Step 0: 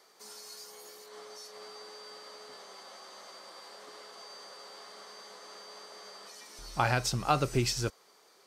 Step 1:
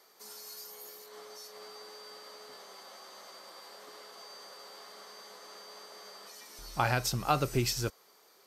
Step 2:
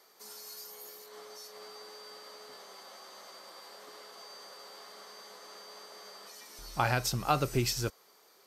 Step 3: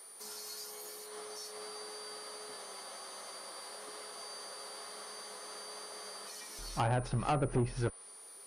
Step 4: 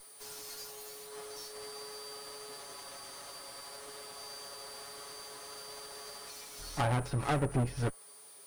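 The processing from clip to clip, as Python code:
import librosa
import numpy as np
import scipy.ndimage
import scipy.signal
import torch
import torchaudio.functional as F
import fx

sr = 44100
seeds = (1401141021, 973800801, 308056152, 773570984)

y1 = fx.peak_eq(x, sr, hz=13000.0, db=14.5, octaves=0.21)
y1 = y1 * librosa.db_to_amplitude(-1.0)
y2 = y1
y3 = fx.env_lowpass_down(y2, sr, base_hz=950.0, full_db=-25.5)
y3 = fx.tube_stage(y3, sr, drive_db=29.0, bias=0.35)
y3 = y3 + 10.0 ** (-54.0 / 20.0) * np.sin(2.0 * np.pi * 9400.0 * np.arange(len(y3)) / sr)
y3 = y3 * librosa.db_to_amplitude(3.5)
y4 = fx.lower_of_two(y3, sr, delay_ms=7.1)
y4 = y4 * librosa.db_to_amplitude(1.0)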